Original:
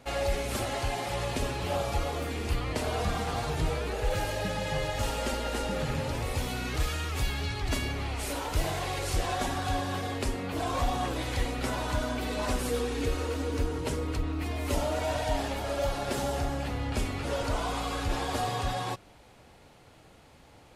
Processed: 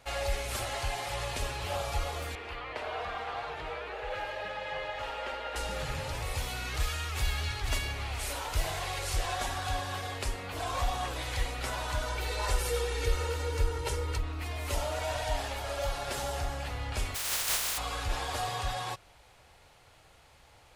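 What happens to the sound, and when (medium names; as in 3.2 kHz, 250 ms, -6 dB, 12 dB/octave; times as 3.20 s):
2.35–5.56 s: three-band isolator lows -15 dB, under 280 Hz, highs -22 dB, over 3.4 kHz
6.67–7.30 s: echo throw 480 ms, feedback 50%, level -8 dB
12.06–14.18 s: comb 2.2 ms, depth 75%
17.14–17.77 s: spectral contrast reduction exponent 0.1
whole clip: peaking EQ 240 Hz -13.5 dB 1.8 oct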